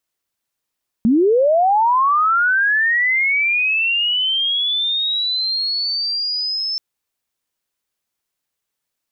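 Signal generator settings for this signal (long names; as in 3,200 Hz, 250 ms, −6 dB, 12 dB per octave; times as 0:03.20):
glide linear 210 Hz → 5,300 Hz −10.5 dBFS → −19.5 dBFS 5.73 s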